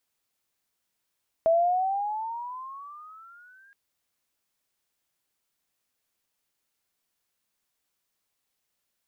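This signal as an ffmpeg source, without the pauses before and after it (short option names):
-f lavfi -i "aevalsrc='pow(10,(-17-36.5*t/2.27)/20)*sin(2*PI*649*2.27/(16*log(2)/12)*(exp(16*log(2)/12*t/2.27)-1))':d=2.27:s=44100"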